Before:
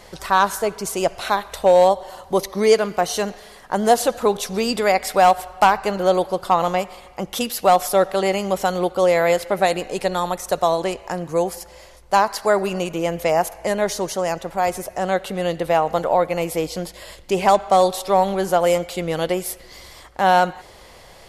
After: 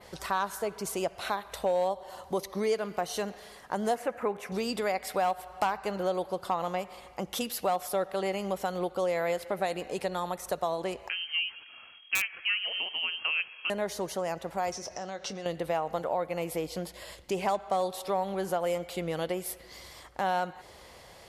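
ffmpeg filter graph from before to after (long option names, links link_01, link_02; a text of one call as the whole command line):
ffmpeg -i in.wav -filter_complex "[0:a]asettb=1/sr,asplit=3[link_01][link_02][link_03];[link_01]atrim=end=3.954[link_04];[link_02]atrim=start=3.95:end=4.52,asetpts=PTS-STARTPTS,afade=type=in:duration=0.004:curve=qsin,afade=type=out:start_time=0.566:duration=0.004:curve=qsin,highpass=frequency=110:poles=1,highshelf=frequency=2900:width_type=q:width=3:gain=-9.5[link_05];[link_03]atrim=start=4.516[link_06];[link_04][link_05]acrossfade=duration=0.004:curve1=hsin:curve2=qsin[link_07];[link_07][link_06]acrossfade=duration=0.004:curve1=qsin:curve2=hsin,asettb=1/sr,asplit=3[link_08][link_09][link_10];[link_08]atrim=end=11.094[link_11];[link_09]atrim=start=11.09:end=13.7,asetpts=PTS-STARTPTS,afade=type=in:duration=0.004:curve=qsin,afade=type=out:start_time=2.606:duration=0.004:curve=qsin,lowpass=frequency=2800:width_type=q:width=0.5098,lowpass=frequency=2800:width_type=q:width=0.6013,lowpass=frequency=2800:width_type=q:width=0.9,lowpass=frequency=2800:width_type=q:width=2.563,afreqshift=-3300,aeval=exprs='(mod(1.88*val(0)+1,2)-1)/1.88':channel_layout=same[link_12];[link_10]atrim=start=13.696[link_13];[link_11][link_12]acrossfade=duration=0.004:curve1=hsin:curve2=qsin[link_14];[link_14][link_13]acrossfade=duration=0.004:curve1=qsin:curve2=hsin,asettb=1/sr,asplit=3[link_15][link_16][link_17];[link_15]atrim=end=14.724[link_18];[link_16]atrim=start=14.72:end=15.46,asetpts=PTS-STARTPTS,afade=type=in:duration=0.004:curve=qsin,afade=type=out:start_time=0.736:duration=0.004:curve=qsin,acompressor=threshold=-30dB:ratio=4:attack=3.2:release=140:knee=1:detection=peak,lowpass=frequency=5700:width_type=q:width=8.2,asplit=2[link_19][link_20];[link_20]adelay=25,volume=-13dB[link_21];[link_19][link_21]amix=inputs=2:normalize=0,atrim=end_sample=32634[link_22];[link_17]atrim=start=15.456[link_23];[link_18][link_22]acrossfade=duration=0.004:curve1=hsin:curve2=qsin[link_24];[link_24][link_23]acrossfade=duration=0.004:curve1=qsin:curve2=hsin,highpass=50,adynamicequalizer=threshold=0.00794:dfrequency=6500:dqfactor=1.1:tfrequency=6500:tqfactor=1.1:attack=5:release=100:ratio=0.375:range=2.5:mode=cutabove:tftype=bell,acompressor=threshold=-25dB:ratio=2,volume=-6dB" out.wav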